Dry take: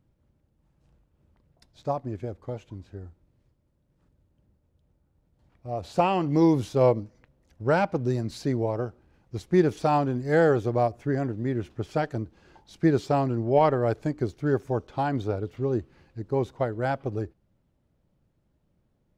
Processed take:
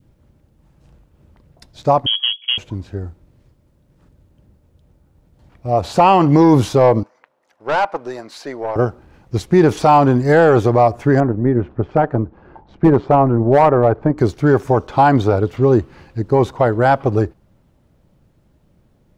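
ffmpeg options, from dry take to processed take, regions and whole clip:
ffmpeg -i in.wav -filter_complex "[0:a]asettb=1/sr,asplit=3[link_01][link_02][link_03];[link_01]atrim=end=2.064[link_04];[link_02]atrim=start=2.06:end=2.58,asetpts=PTS-STARTPTS,afade=type=in:duration=0.004:curve=qsin,afade=type=out:start_time=0.516:duration=0.004:curve=qsin,adynamicsmooth=sensitivity=6:basefreq=530,lowpass=frequency=2900:width_type=q:width=0.5098,lowpass=frequency=2900:width_type=q:width=0.6013,lowpass=frequency=2900:width_type=q:width=0.9,lowpass=frequency=2900:width_type=q:width=2.563,afreqshift=-3400[link_05];[link_03]atrim=start=2.576[link_06];[link_04][link_05]acrossfade=duration=0.004:curve1=hsin:curve2=qsin[link_07];[link_07][link_06]acrossfade=duration=0.004:curve1=qsin:curve2=hsin,asettb=1/sr,asplit=3[link_08][link_09][link_10];[link_08]atrim=end=7.034[link_11];[link_09]atrim=start=7.03:end=8.76,asetpts=PTS-STARTPTS,afade=type=in:duration=0.004:curve=qsin,afade=type=out:start_time=1.726:duration=0.004:curve=qsin,highpass=780,highshelf=frequency=2400:gain=-11.5,aeval=exprs='(tanh(25.1*val(0)+0.25)-tanh(0.25))/25.1':channel_layout=same[link_12];[link_10]atrim=start=8.756[link_13];[link_11][link_12]acrossfade=duration=0.004:curve1=hsin:curve2=qsin[link_14];[link_14][link_13]acrossfade=duration=0.004:curve1=qsin:curve2=hsin,asettb=1/sr,asplit=3[link_15][link_16][link_17];[link_15]atrim=end=11.204[link_18];[link_16]atrim=start=11.2:end=14.18,asetpts=PTS-STARTPTS,afade=type=in:duration=0.004:curve=qsin,afade=type=out:start_time=2.976:duration=0.004:curve=qsin,lowpass=1300,asoftclip=type=hard:threshold=-15dB,tremolo=f=130:d=0.4[link_19];[link_17]atrim=start=14.176[link_20];[link_18][link_19]acrossfade=duration=0.004:curve1=hsin:curve2=qsin[link_21];[link_21][link_20]acrossfade=duration=0.004:curve1=qsin:curve2=hsin,adynamicequalizer=threshold=0.0126:dfrequency=1000:dqfactor=1.2:tfrequency=1000:tqfactor=1.2:attack=5:release=100:ratio=0.375:range=3.5:mode=boostabove:tftype=bell,acontrast=78,alimiter=limit=-10.5dB:level=0:latency=1:release=33,volume=7dB" out.wav

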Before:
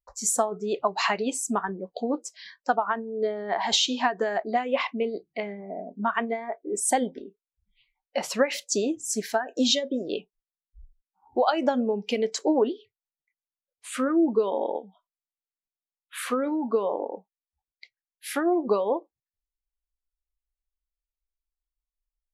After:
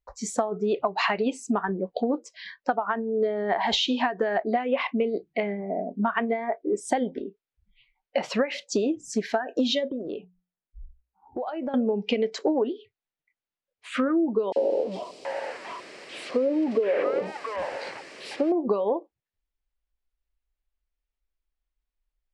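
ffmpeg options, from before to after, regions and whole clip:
ffmpeg -i in.wav -filter_complex "[0:a]asettb=1/sr,asplit=3[link_01][link_02][link_03];[link_01]atrim=end=9.894[link_04];[link_02]atrim=start=9.89:end=11.74,asetpts=PTS-STARTPTS,afade=type=in:duration=0.004:curve=qsin,afade=type=out:start_time=1.846:duration=0.004:curve=qsin,bandreject=frequency=60:width_type=h:width=6,bandreject=frequency=120:width_type=h:width=6,bandreject=frequency=180:width_type=h:width=6,acompressor=threshold=-38dB:ratio=3:attack=3.2:release=140:knee=1:detection=peak,highshelf=frequency=2300:gain=-11[link_05];[link_03]atrim=start=11.736[link_06];[link_04][link_05]acrossfade=duration=0.004:curve1=hsin:curve2=qsin[link_07];[link_07][link_06]acrossfade=duration=0.004:curve1=qsin:curve2=hsin,asettb=1/sr,asplit=3[link_08][link_09][link_10];[link_08]atrim=end=14.524[link_11];[link_09]atrim=start=14.52:end=18.52,asetpts=PTS-STARTPTS,afade=type=in:duration=0.004:curve=qsin,afade=type=out:start_time=3.996:duration=0.004:curve=qsin,aeval=exprs='val(0)+0.5*0.0422*sgn(val(0))':channel_layout=same,highpass=310,equalizer=frequency=380:width_type=q:width=4:gain=4,equalizer=frequency=560:width_type=q:width=4:gain=5,equalizer=frequency=830:width_type=q:width=4:gain=-5,equalizer=frequency=1400:width_type=q:width=4:gain=-6,equalizer=frequency=3500:width_type=q:width=4:gain=-8,equalizer=frequency=6400:width_type=q:width=4:gain=-7,lowpass=frequency=8800:width=0.5412,lowpass=frequency=8800:width=1.3066,acrossover=split=870|3100[link_12][link_13][link_14];[link_12]adelay=40[link_15];[link_13]adelay=730[link_16];[link_15][link_16][link_14]amix=inputs=3:normalize=0,atrim=end_sample=176400[link_17];[link_10]atrim=start=18.516[link_18];[link_11][link_17]acrossfade=duration=0.004:curve1=hsin:curve2=qsin[link_19];[link_19][link_18]acrossfade=duration=0.004:curve1=qsin:curve2=hsin,lowpass=3000,equalizer=frequency=1100:width=1.5:gain=-3,acompressor=threshold=-28dB:ratio=6,volume=7dB" out.wav

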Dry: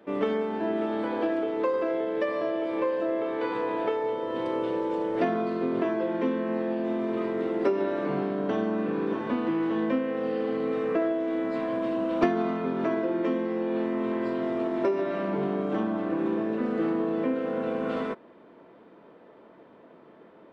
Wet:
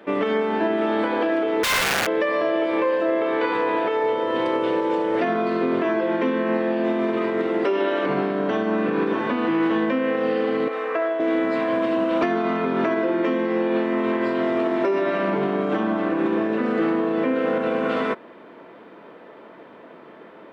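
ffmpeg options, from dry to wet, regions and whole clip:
ffmpeg -i in.wav -filter_complex "[0:a]asettb=1/sr,asplit=3[link_01][link_02][link_03];[link_01]atrim=end=1.634[link_04];[link_02]atrim=start=1.63:end=2.08,asetpts=PTS-STARTPTS,afade=type=in:duration=0.004:curve=qsin,afade=type=out:start_time=0.446:duration=0.004:curve=qsin,equalizer=frequency=220:width=0.68:gain=-7,aeval=exprs='(mod(22.4*val(0)+1,2)-1)/22.4':channel_layout=same[link_05];[link_03]atrim=start=2.076[link_06];[link_04][link_05]acrossfade=duration=0.004:curve1=hsin:curve2=qsin[link_07];[link_07][link_06]acrossfade=duration=0.004:curve1=qsin:curve2=hsin,asettb=1/sr,asplit=3[link_08][link_09][link_10];[link_08]atrim=end=7.654[link_11];[link_09]atrim=start=7.65:end=8.06,asetpts=PTS-STARTPTS,afade=type=in:duration=0.004:curve=qsin,afade=type=out:start_time=0.406:duration=0.004:curve=qsin,highpass=240,equalizer=frequency=3100:width=5.4:gain=10.5[link_12];[link_10]atrim=start=8.056[link_13];[link_11][link_12]acrossfade=duration=0.004:curve1=hsin:curve2=qsin[link_14];[link_14][link_13]acrossfade=duration=0.004:curve1=qsin:curve2=hsin,asettb=1/sr,asplit=3[link_15][link_16][link_17];[link_15]atrim=end=10.684[link_18];[link_16]atrim=start=10.68:end=11.2,asetpts=PTS-STARTPTS,afade=type=in:duration=0.004:curve=qsin,afade=type=out:start_time=0.516:duration=0.004:curve=qsin,highpass=870,tiltshelf=frequency=1100:gain=6.5[link_19];[link_17]atrim=start=11.196[link_20];[link_18][link_19]acrossfade=duration=0.004:curve1=hsin:curve2=qsin[link_21];[link_21][link_20]acrossfade=duration=0.004:curve1=qsin:curve2=hsin,equalizer=frequency=2100:width=0.7:gain=5,alimiter=limit=-20.5dB:level=0:latency=1:release=102,lowshelf=frequency=140:gain=-6.5,volume=8dB" out.wav

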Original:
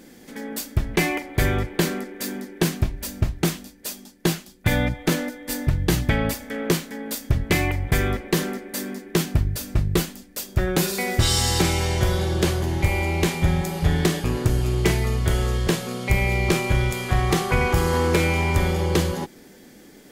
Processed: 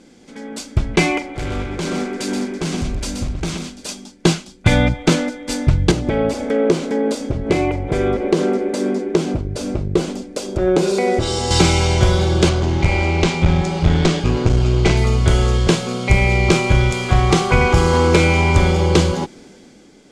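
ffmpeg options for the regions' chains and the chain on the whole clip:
ffmpeg -i in.wav -filter_complex "[0:a]asettb=1/sr,asplit=3[link_01][link_02][link_03];[link_01]atrim=end=1.234[link_04];[link_02]atrim=start=1.23:end=3.89,asetpts=PTS-STARTPTS,afade=type=in:duration=0.004:curve=qsin,afade=type=out:start_time=2.656:duration=0.004:curve=qsin,acompressor=threshold=-27dB:ratio=3:attack=3.2:release=140:knee=1:detection=peak,volume=28dB,asoftclip=hard,volume=-28dB,aecho=1:1:126:0.531,atrim=end_sample=117306[link_05];[link_03]atrim=start=3.886[link_06];[link_04][link_05]acrossfade=duration=0.004:curve1=hsin:curve2=qsin[link_07];[link_07][link_06]acrossfade=duration=0.004:curve1=qsin:curve2=hsin,asettb=1/sr,asplit=3[link_08][link_09][link_10];[link_08]atrim=end=5.914[link_11];[link_09]atrim=start=5.91:end=11.51,asetpts=PTS-STARTPTS,afade=type=in:duration=0.004:curve=qsin,afade=type=out:start_time=5.596:duration=0.004:curve=qsin,acompressor=threshold=-31dB:ratio=3:attack=3.2:release=140:knee=1:detection=peak,equalizer=frequency=450:width_type=o:width=2:gain=13.5[link_12];[link_10]atrim=start=11.506[link_13];[link_11][link_12]acrossfade=duration=0.004:curve1=hsin:curve2=qsin[link_14];[link_14][link_13]acrossfade=duration=0.004:curve1=qsin:curve2=hsin,asettb=1/sr,asplit=3[link_15][link_16][link_17];[link_15]atrim=end=12.494[link_18];[link_16]atrim=start=12.49:end=14.97,asetpts=PTS-STARTPTS,afade=type=in:duration=0.004:curve=qsin,afade=type=out:start_time=2.476:duration=0.004:curve=qsin,lowpass=6600,aeval=exprs='clip(val(0),-1,0.0841)':channel_layout=same[link_19];[link_17]atrim=start=14.966[link_20];[link_18][link_19]acrossfade=duration=0.004:curve1=hsin:curve2=qsin[link_21];[link_21][link_20]acrossfade=duration=0.004:curve1=qsin:curve2=hsin,lowpass=frequency=8200:width=0.5412,lowpass=frequency=8200:width=1.3066,bandreject=frequency=1800:width=6.4,dynaudnorm=framelen=130:gausssize=11:maxgain=10dB" out.wav

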